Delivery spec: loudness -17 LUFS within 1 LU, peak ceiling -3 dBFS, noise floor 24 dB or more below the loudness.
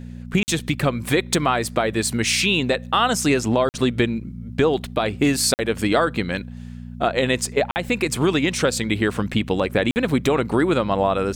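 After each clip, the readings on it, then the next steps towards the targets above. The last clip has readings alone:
dropouts 5; longest dropout 49 ms; hum 60 Hz; harmonics up to 240 Hz; hum level -32 dBFS; loudness -21.0 LUFS; peak -7.0 dBFS; loudness target -17.0 LUFS
-> interpolate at 0.43/3.69/5.54/7.71/9.91, 49 ms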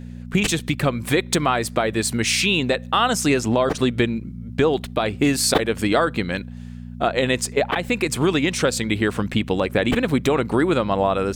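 dropouts 0; hum 60 Hz; harmonics up to 240 Hz; hum level -32 dBFS
-> de-hum 60 Hz, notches 4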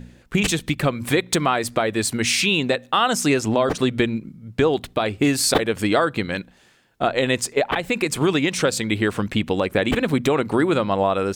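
hum none; loudness -21.0 LUFS; peak -4.5 dBFS; loudness target -17.0 LUFS
-> gain +4 dB; limiter -3 dBFS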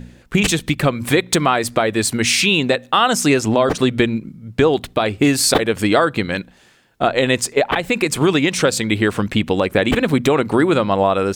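loudness -17.0 LUFS; peak -3.0 dBFS; noise floor -51 dBFS

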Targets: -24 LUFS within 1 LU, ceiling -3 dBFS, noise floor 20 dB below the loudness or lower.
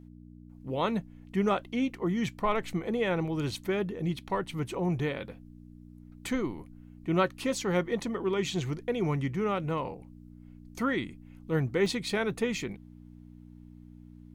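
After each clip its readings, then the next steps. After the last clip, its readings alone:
dropouts 1; longest dropout 1.5 ms; hum 60 Hz; harmonics up to 300 Hz; hum level -49 dBFS; loudness -31.0 LUFS; peak -13.5 dBFS; loudness target -24.0 LUFS
-> interpolate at 11.86, 1.5 ms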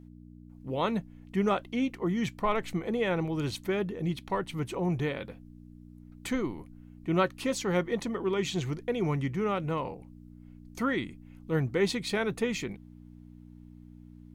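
dropouts 0; hum 60 Hz; harmonics up to 300 Hz; hum level -49 dBFS
-> de-hum 60 Hz, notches 5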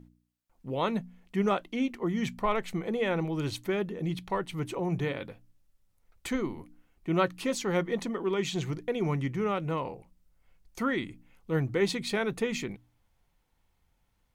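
hum none; loudness -31.5 LUFS; peak -14.0 dBFS; loudness target -24.0 LUFS
-> gain +7.5 dB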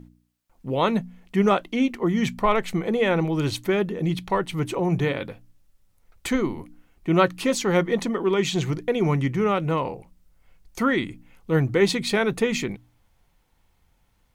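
loudness -24.0 LUFS; peak -6.5 dBFS; noise floor -65 dBFS

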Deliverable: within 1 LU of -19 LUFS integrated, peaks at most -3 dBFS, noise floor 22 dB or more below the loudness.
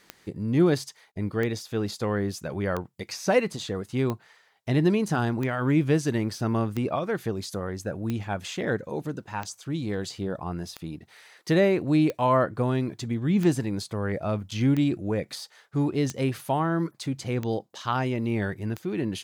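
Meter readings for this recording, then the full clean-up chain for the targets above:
clicks 15; loudness -27.0 LUFS; peak -10.0 dBFS; loudness target -19.0 LUFS
-> de-click; gain +8 dB; limiter -3 dBFS

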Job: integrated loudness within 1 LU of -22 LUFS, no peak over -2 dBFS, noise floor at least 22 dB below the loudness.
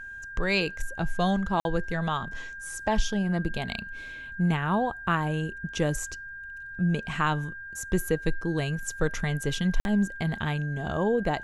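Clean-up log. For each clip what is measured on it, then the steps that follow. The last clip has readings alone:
dropouts 2; longest dropout 51 ms; steady tone 1600 Hz; tone level -38 dBFS; loudness -29.0 LUFS; peak -12.5 dBFS; loudness target -22.0 LUFS
-> interpolate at 1.6/9.8, 51 ms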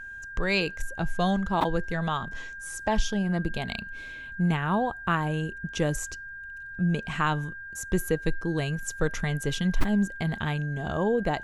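dropouts 0; steady tone 1600 Hz; tone level -38 dBFS
-> notch 1600 Hz, Q 30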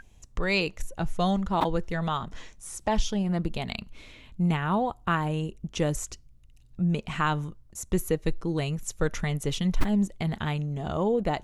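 steady tone none; loudness -29.0 LUFS; peak -10.0 dBFS; loudness target -22.0 LUFS
-> gain +7 dB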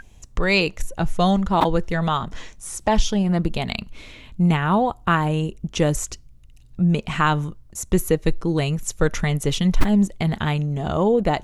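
loudness -22.0 LUFS; peak -3.0 dBFS; noise floor -47 dBFS

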